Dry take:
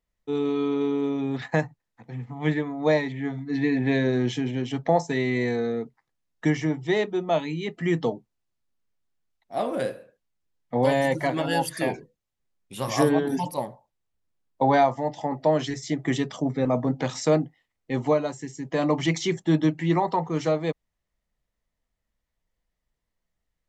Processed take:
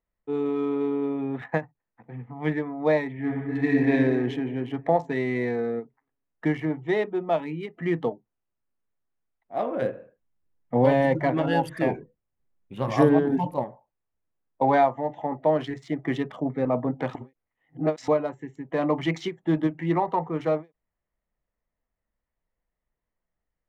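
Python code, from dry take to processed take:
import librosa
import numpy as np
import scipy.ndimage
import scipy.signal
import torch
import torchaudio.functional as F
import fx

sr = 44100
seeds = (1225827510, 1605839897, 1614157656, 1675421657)

y = fx.reverb_throw(x, sr, start_s=3.13, length_s=0.78, rt60_s=2.0, drr_db=-2.0)
y = fx.low_shelf(y, sr, hz=300.0, db=8.5, at=(9.82, 13.64))
y = fx.edit(y, sr, fx.reverse_span(start_s=17.15, length_s=0.93), tone=tone)
y = fx.wiener(y, sr, points=9)
y = fx.bass_treble(y, sr, bass_db=-4, treble_db=-14)
y = fx.end_taper(y, sr, db_per_s=330.0)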